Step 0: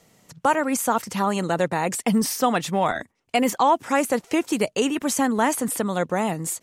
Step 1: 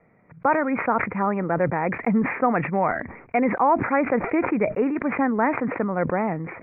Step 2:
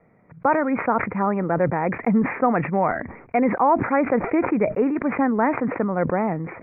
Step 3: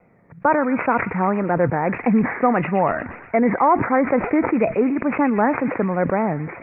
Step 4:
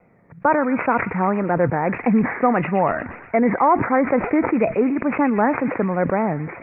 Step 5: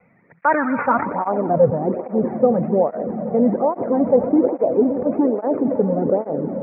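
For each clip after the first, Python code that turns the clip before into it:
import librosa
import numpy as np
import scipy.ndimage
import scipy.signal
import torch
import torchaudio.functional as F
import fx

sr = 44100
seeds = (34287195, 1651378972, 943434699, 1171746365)

y1 = scipy.signal.sosfilt(scipy.signal.cheby1(8, 1.0, 2400.0, 'lowpass', fs=sr, output='sos'), x)
y1 = fx.sustainer(y1, sr, db_per_s=75.0)
y2 = fx.high_shelf(y1, sr, hz=2400.0, db=-8.5)
y2 = y2 * librosa.db_to_amplitude(2.0)
y3 = fx.wow_flutter(y2, sr, seeds[0], rate_hz=2.1, depth_cents=110.0)
y3 = fx.echo_wet_highpass(y3, sr, ms=120, feedback_pct=65, hz=2100.0, wet_db=-6.5)
y3 = y3 * librosa.db_to_amplitude(2.0)
y4 = y3
y5 = fx.echo_swell(y4, sr, ms=91, loudest=5, wet_db=-16)
y5 = fx.filter_sweep_lowpass(y5, sr, from_hz=2300.0, to_hz=520.0, start_s=0.33, end_s=1.73, q=2.2)
y5 = fx.flanger_cancel(y5, sr, hz=1.2, depth_ms=3.3)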